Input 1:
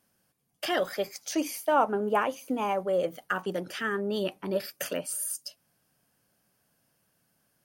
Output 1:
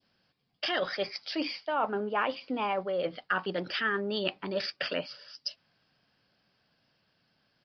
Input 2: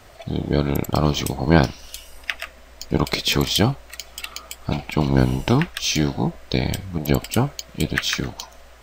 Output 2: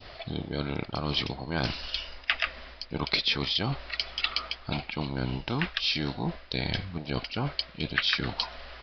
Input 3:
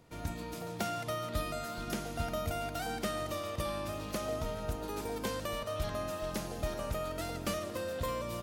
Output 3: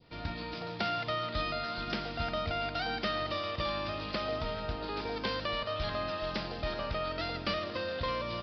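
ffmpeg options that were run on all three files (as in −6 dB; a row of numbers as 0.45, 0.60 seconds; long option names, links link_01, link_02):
-af "areverse,acompressor=threshold=-29dB:ratio=6,areverse,highshelf=frequency=2600:gain=10.5,aresample=11025,aresample=44100,adynamicequalizer=threshold=0.00447:dfrequency=1500:dqfactor=0.76:tfrequency=1500:tqfactor=0.76:attack=5:release=100:ratio=0.375:range=1.5:mode=boostabove:tftype=bell"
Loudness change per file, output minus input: −2.0, −8.0, +2.5 LU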